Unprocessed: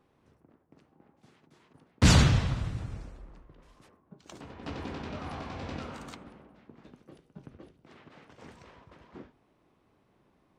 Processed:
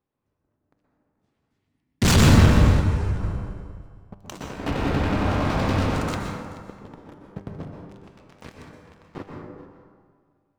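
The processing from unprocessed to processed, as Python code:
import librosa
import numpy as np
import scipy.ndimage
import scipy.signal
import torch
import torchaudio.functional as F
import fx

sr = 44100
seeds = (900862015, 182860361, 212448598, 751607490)

y = fx.octave_divider(x, sr, octaves=1, level_db=-3.0)
y = fx.spec_box(y, sr, start_s=1.47, length_s=0.57, low_hz=330.0, high_hz=1700.0, gain_db=-15)
y = fx.lowpass(y, sr, hz=3700.0, slope=12, at=(4.56, 5.45))
y = fx.leveller(y, sr, passes=5)
y = fx.comb_fb(y, sr, f0_hz=99.0, decay_s=1.7, harmonics='all', damping=0.0, mix_pct=70)
y = y + 10.0 ** (-19.0 / 20.0) * np.pad(y, (int(431 * sr / 1000.0), 0))[:len(y)]
y = fx.rev_plate(y, sr, seeds[0], rt60_s=1.8, hf_ratio=0.3, predelay_ms=110, drr_db=0.0)
y = fx.ensemble(y, sr, at=(2.8, 3.22), fade=0.02)
y = y * 10.0 ** (3.0 / 20.0)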